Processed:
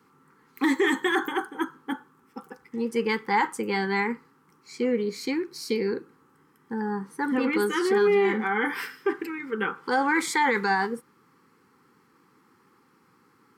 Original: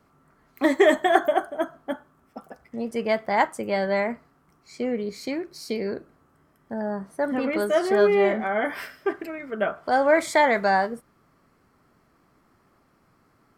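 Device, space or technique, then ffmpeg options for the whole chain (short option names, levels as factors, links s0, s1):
PA system with an anti-feedback notch: -af "highpass=170,asuperstop=centerf=640:order=12:qfactor=2.5,alimiter=limit=0.141:level=0:latency=1:release=16,volume=1.33"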